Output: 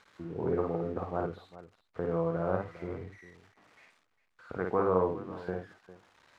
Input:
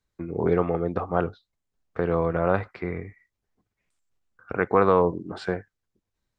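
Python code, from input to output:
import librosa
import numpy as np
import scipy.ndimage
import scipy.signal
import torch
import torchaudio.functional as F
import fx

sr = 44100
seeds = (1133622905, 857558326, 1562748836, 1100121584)

y = x + 0.5 * 10.0 ** (-22.0 / 20.0) * np.diff(np.sign(x), prepend=np.sign(x[:1]))
y = scipy.signal.sosfilt(scipy.signal.butter(2, 1300.0, 'lowpass', fs=sr, output='sos'), y)
y = fx.echo_multitap(y, sr, ms=(54, 403), db=(-3.5, -16.5))
y = y * librosa.db_to_amplitude(-9.0)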